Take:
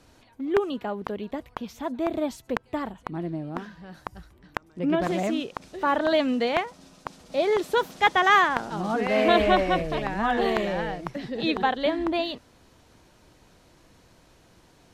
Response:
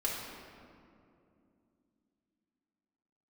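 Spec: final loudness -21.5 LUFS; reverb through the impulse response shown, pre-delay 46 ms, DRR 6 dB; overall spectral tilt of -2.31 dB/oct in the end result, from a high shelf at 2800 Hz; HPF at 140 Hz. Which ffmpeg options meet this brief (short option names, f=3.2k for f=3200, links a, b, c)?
-filter_complex "[0:a]highpass=140,highshelf=f=2.8k:g=3,asplit=2[a][b];[1:a]atrim=start_sample=2205,adelay=46[c];[b][c]afir=irnorm=-1:irlink=0,volume=-11.5dB[d];[a][d]amix=inputs=2:normalize=0,volume=3dB"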